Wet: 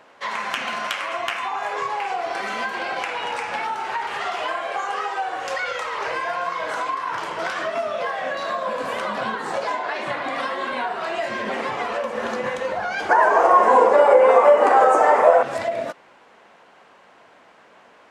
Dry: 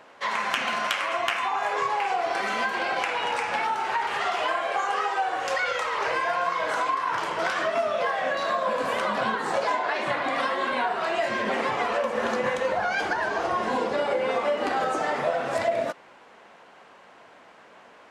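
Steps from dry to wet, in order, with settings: 13.09–15.43 s: graphic EQ 125/500/1000/2000/4000/8000 Hz -11/+11/+12/+4/-8/+8 dB

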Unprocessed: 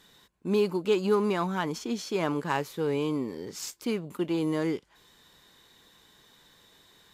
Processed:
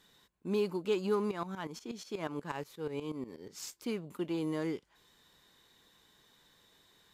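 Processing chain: 1.31–3.58 s: tremolo saw up 8.3 Hz, depth 80%; trim -6.5 dB

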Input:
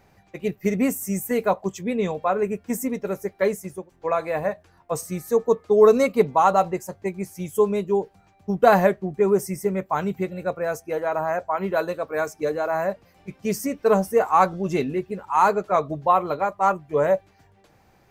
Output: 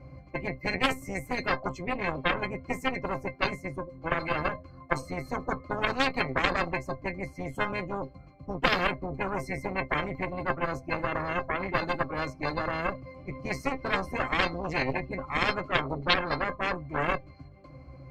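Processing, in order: pitch-class resonator C, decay 0.13 s; Chebyshev shaper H 3 -14 dB, 4 -11 dB, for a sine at -14 dBFS; spectrum-flattening compressor 4:1; trim +5.5 dB

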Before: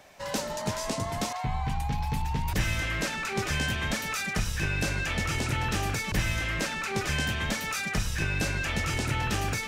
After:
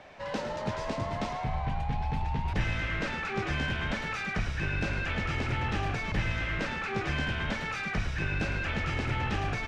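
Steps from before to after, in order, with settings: companding laws mixed up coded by mu; low-pass 3.1 kHz 12 dB/octave; frequency-shifting echo 108 ms, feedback 50%, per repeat -63 Hz, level -9 dB; trim -3 dB

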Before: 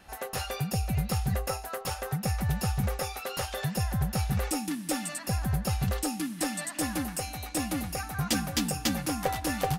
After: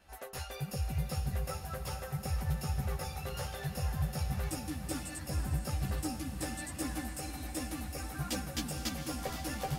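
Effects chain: chorus voices 6, 0.71 Hz, delay 14 ms, depth 1.9 ms; echo that smears into a reverb 474 ms, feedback 63%, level -8.5 dB; trim -5.5 dB

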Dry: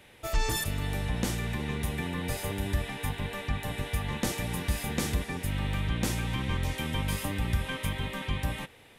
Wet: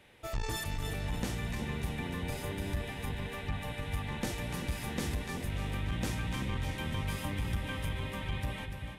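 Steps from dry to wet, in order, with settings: treble shelf 6.5 kHz -5.5 dB; on a send: two-band feedback delay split 740 Hz, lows 388 ms, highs 293 ms, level -7 dB; on the sum: transformer saturation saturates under 120 Hz; trim -4.5 dB

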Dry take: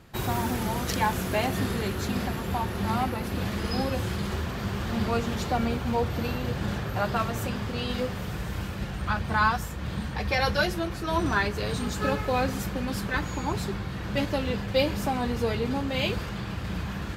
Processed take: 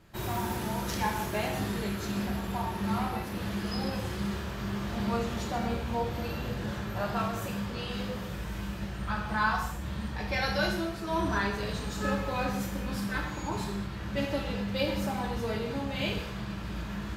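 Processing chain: gated-style reverb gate 270 ms falling, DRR -1 dB; trim -7.5 dB

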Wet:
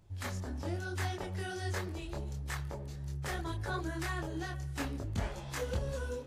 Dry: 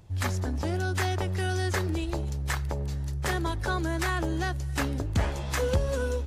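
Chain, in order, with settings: de-hum 125.6 Hz, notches 28; chorus voices 4, 1 Hz, delay 24 ms, depth 4.6 ms; trim -5.5 dB

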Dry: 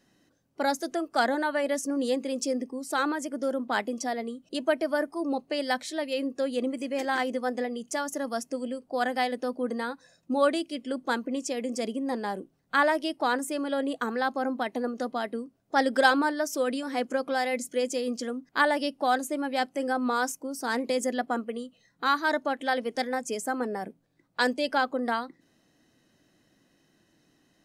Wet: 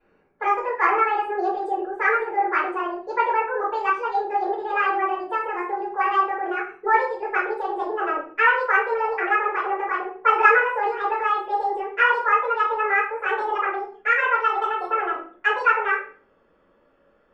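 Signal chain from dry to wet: gliding tape speed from 145% -> 174%; resonant low-pass 1.6 kHz, resonance Q 2.5; simulated room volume 40 m³, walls mixed, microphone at 3.1 m; trim -11 dB

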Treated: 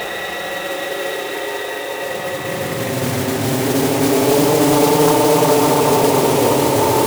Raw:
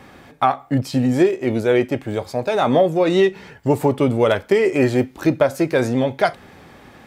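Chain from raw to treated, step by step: spectral sustain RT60 1.05 s; on a send: two-band feedback delay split 500 Hz, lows 143 ms, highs 310 ms, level -10.5 dB; on the sum: Paulstretch 41×, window 0.05 s, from 3.59 s; modulation noise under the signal 14 dB; bass shelf 440 Hz -9.5 dB; in parallel at +1.5 dB: peak limiter -14.5 dBFS, peak gain reduction 10.5 dB; on the sum: loudspeaker Doppler distortion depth 0.38 ms

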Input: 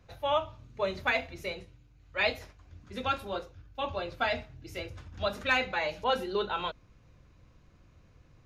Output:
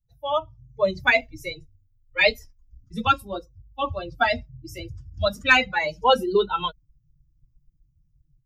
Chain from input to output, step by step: expander on every frequency bin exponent 2; level rider gain up to 10 dB; 1.21–3.07 s: frequency shift -28 Hz; trim +3 dB

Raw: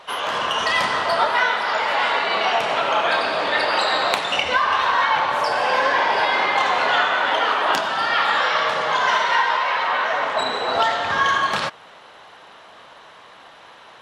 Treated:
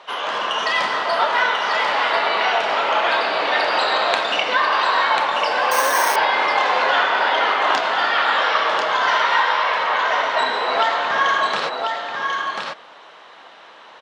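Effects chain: band-pass 240–6400 Hz; delay 1041 ms -4.5 dB; 5.71–6.16 s: careless resampling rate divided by 6×, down none, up hold

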